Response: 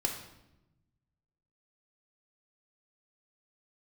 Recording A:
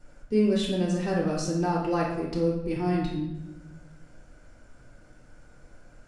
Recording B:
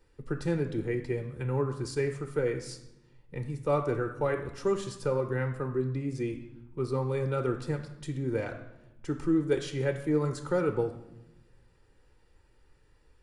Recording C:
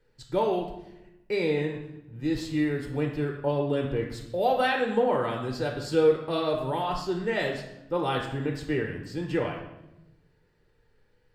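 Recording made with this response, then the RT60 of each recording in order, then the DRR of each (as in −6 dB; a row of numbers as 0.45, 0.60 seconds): C; 0.95, 0.95, 0.95 seconds; −3.5, 6.5, 1.5 decibels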